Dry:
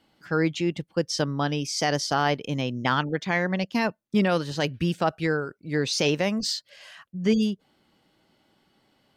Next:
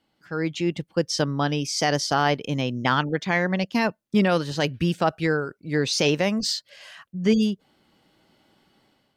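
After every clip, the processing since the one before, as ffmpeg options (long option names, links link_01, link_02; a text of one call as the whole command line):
ffmpeg -i in.wav -af "dynaudnorm=framelen=340:gausssize=3:maxgain=10dB,volume=-6.5dB" out.wav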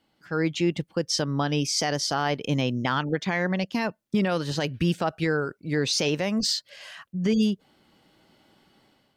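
ffmpeg -i in.wav -af "alimiter=limit=-16dB:level=0:latency=1:release=130,volume=1.5dB" out.wav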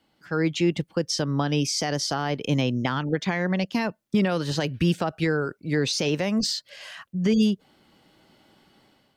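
ffmpeg -i in.wav -filter_complex "[0:a]acrossover=split=390[link_01][link_02];[link_02]acompressor=threshold=-26dB:ratio=6[link_03];[link_01][link_03]amix=inputs=2:normalize=0,volume=2dB" out.wav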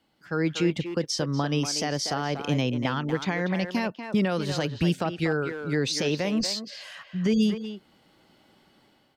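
ffmpeg -i in.wav -filter_complex "[0:a]asplit=2[link_01][link_02];[link_02]adelay=240,highpass=300,lowpass=3400,asoftclip=type=hard:threshold=-20dB,volume=-7dB[link_03];[link_01][link_03]amix=inputs=2:normalize=0,volume=-2dB" out.wav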